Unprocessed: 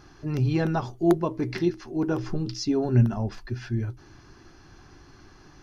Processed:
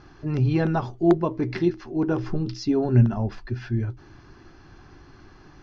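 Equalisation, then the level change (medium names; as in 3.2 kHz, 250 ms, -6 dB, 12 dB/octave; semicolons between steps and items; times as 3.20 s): distance through air 130 m; +2.5 dB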